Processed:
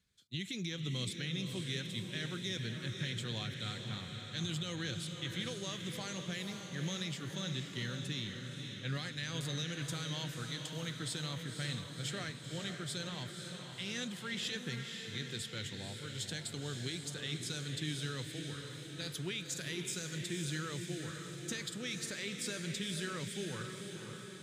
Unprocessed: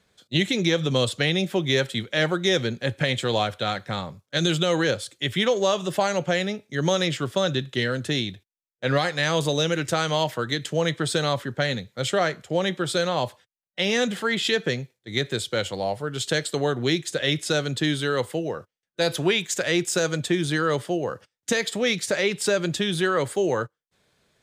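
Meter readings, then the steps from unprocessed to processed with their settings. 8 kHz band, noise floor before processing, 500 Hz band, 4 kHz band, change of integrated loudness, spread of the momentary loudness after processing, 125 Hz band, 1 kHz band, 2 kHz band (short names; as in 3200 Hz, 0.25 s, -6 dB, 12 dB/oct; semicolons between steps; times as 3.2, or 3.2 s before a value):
-10.5 dB, -84 dBFS, -22.5 dB, -12.5 dB, -15.0 dB, 5 LU, -11.0 dB, -21.0 dB, -16.0 dB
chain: passive tone stack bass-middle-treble 6-0-2; limiter -32 dBFS, peak gain reduction 6 dB; diffused feedback echo 0.519 s, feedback 61%, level -5.5 dB; gain +3.5 dB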